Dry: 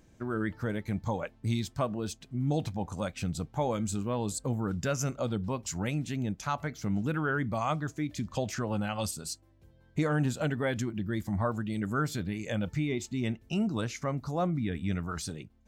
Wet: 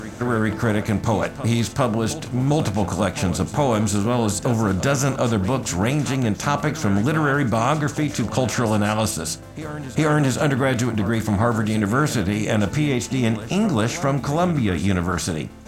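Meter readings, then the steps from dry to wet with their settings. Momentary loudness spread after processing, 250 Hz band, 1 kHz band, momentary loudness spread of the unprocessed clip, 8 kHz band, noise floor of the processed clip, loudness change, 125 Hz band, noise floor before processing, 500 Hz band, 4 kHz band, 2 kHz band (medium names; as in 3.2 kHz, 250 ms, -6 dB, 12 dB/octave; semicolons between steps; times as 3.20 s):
4 LU, +11.5 dB, +12.0 dB, 5 LU, +12.0 dB, -35 dBFS, +11.5 dB, +11.0 dB, -61 dBFS, +11.5 dB, +12.5 dB, +11.5 dB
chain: spectral levelling over time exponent 0.6; de-hum 164.3 Hz, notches 18; reverse echo 406 ms -13.5 dB; trim +7.5 dB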